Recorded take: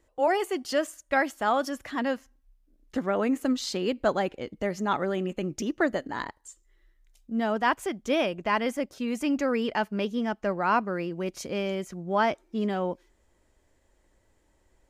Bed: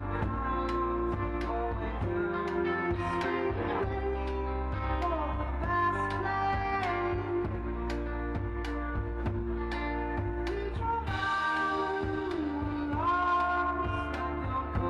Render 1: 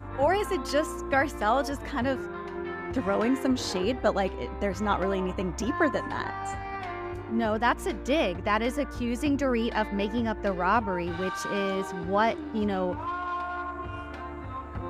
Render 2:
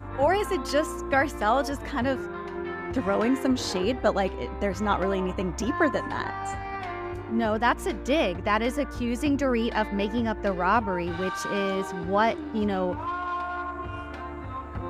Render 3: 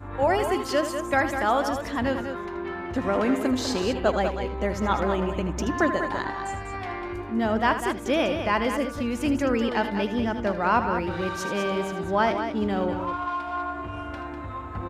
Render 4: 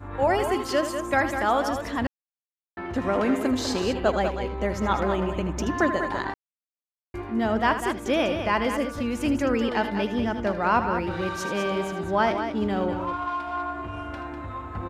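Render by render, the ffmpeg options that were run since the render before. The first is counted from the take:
-filter_complex "[1:a]volume=0.596[s0];[0:a][s0]amix=inputs=2:normalize=0"
-af "volume=1.19"
-af "aecho=1:1:78.72|198.3:0.282|0.398"
-filter_complex "[0:a]asplit=5[s0][s1][s2][s3][s4];[s0]atrim=end=2.07,asetpts=PTS-STARTPTS,afade=t=out:st=2.066:d=0.004:c=hsin[s5];[s1]atrim=start=2.07:end=2.77,asetpts=PTS-STARTPTS,volume=0[s6];[s2]atrim=start=2.77:end=6.34,asetpts=PTS-STARTPTS,afade=t=in:d=0.004:c=hsin,afade=t=out:st=3.566:d=0.004:c=hsin[s7];[s3]atrim=start=6.34:end=7.14,asetpts=PTS-STARTPTS,volume=0[s8];[s4]atrim=start=7.14,asetpts=PTS-STARTPTS,afade=t=in:d=0.004:c=hsin[s9];[s5][s6][s7][s8][s9]concat=n=5:v=0:a=1"

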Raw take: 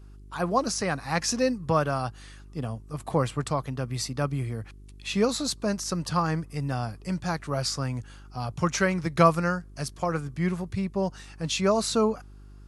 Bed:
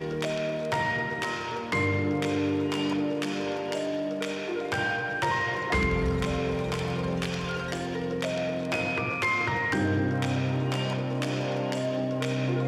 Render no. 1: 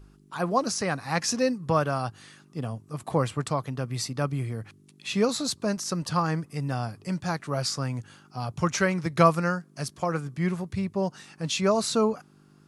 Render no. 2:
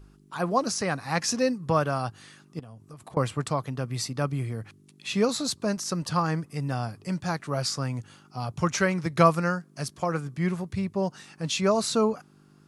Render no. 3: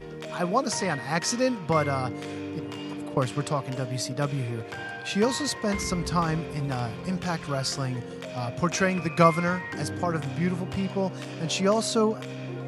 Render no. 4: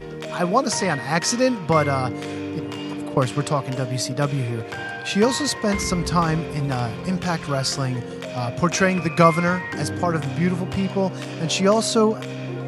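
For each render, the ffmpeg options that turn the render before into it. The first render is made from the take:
-af "bandreject=f=50:t=h:w=4,bandreject=f=100:t=h:w=4"
-filter_complex "[0:a]asettb=1/sr,asplit=3[s0][s1][s2];[s0]atrim=end=2.594[s3];[s1]atrim=start=2.59:end=3.17,asetpts=PTS-STARTPTS,afade=t=in:d=0.004:c=qsin,afade=t=out:st=0.576:d=0.004:c=qsin,acompressor=threshold=0.01:ratio=12:attack=3.2:release=140:knee=1:detection=peak[s4];[s2]atrim=start=3.166[s5];[s3][s4]acrossfade=d=0.004:c1=hsin:c2=qsin[s6];[s6][s5]acrossfade=d=0.004:c1=qsin:c2=hsin,asettb=1/sr,asplit=3[s7][s8][s9];[s7]atrim=end=7.874[s10];[s8]atrim=start=7.87:end=8.45,asetpts=PTS-STARTPTS,afade=t=in:d=0.004:c=qsin,afade=t=out:st=0.576:d=0.004:c=qsin,bandreject=f=1600:w=12[s11];[s9]atrim=start=8.446[s12];[s10][s11]acrossfade=d=0.004:c1=hsin:c2=qsin[s13];[s13][s12]acrossfade=d=0.004:c1=qsin:c2=hsin"
-filter_complex "[1:a]volume=0.398[s0];[0:a][s0]amix=inputs=2:normalize=0"
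-af "volume=1.88,alimiter=limit=0.794:level=0:latency=1"

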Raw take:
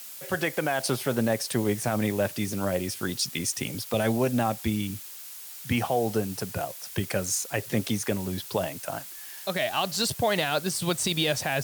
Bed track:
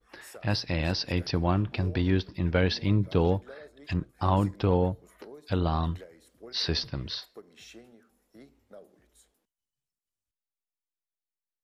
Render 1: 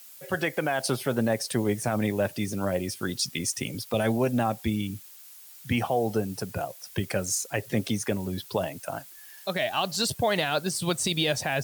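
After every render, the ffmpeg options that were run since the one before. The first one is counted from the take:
-af "afftdn=nr=8:nf=-42"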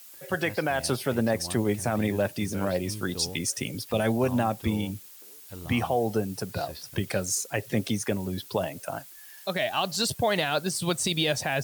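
-filter_complex "[1:a]volume=0.178[s0];[0:a][s0]amix=inputs=2:normalize=0"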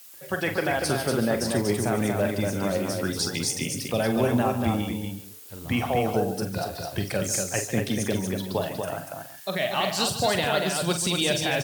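-filter_complex "[0:a]asplit=2[s0][s1];[s1]adelay=41,volume=0.266[s2];[s0][s2]amix=inputs=2:normalize=0,aecho=1:1:48|147|238|373:0.316|0.237|0.596|0.15"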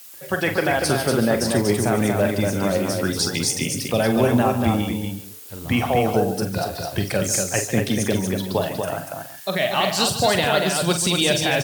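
-af "volume=1.78"

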